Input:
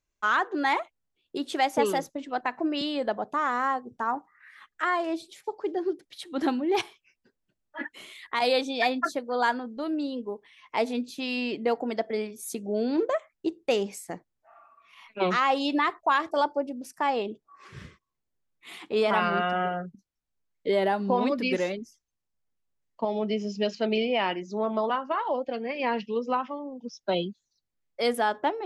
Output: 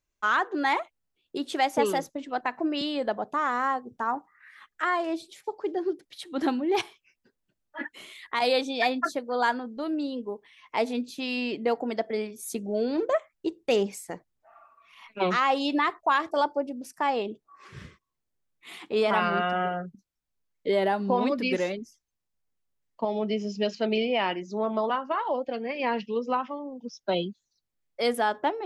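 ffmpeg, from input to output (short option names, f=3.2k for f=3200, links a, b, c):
-filter_complex "[0:a]asettb=1/sr,asplit=3[a][b][c];[a]atrim=end=12.554[d];[b]atrim=start=12.55:end=15.23,asetpts=PTS-STARTPTS,afade=t=in:d=0.004:c=qsin,afade=t=out:st=2.676:d=0.004:c=qsin,aphaser=in_gain=1:out_gain=1:delay=2.1:decay=0.3:speed=1.6:type=sinusoidal[e];[c]atrim=start=15.226[f];[d][e]acrossfade=d=0.004:c1=hsin:c2=qsin[g];[g][f]acrossfade=d=0.004:c1=qsin:c2=hsin"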